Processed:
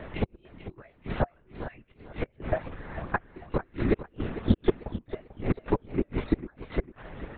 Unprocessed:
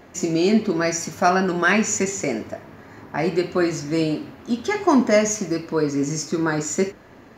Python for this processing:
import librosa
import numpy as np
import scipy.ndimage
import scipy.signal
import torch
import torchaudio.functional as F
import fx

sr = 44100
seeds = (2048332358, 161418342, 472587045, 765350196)

y = fx.gate_flip(x, sr, shuts_db=-14.0, range_db=-37)
y = fx.dereverb_blind(y, sr, rt60_s=0.73)
y = fx.lpc_vocoder(y, sr, seeds[0], excitation='whisper', order=10)
y = fx.echo_warbled(y, sr, ms=446, feedback_pct=34, rate_hz=2.8, cents=132, wet_db=-13.0)
y = y * 10.0 ** (6.0 / 20.0)